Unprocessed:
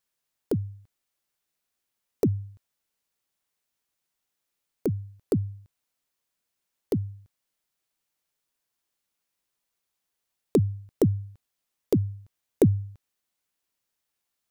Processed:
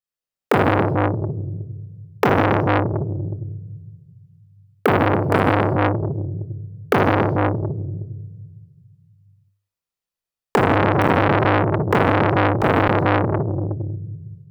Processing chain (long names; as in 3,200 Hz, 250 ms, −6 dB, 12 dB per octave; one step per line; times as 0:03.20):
noise gate −42 dBFS, range −29 dB
convolution reverb RT60 1.3 s, pre-delay 23 ms, DRR −3 dB
automatic gain control gain up to 3 dB
0:10.65–0:12.88: low-shelf EQ 290 Hz +5.5 dB
boost into a limiter +13.5 dB
saturating transformer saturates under 1,100 Hz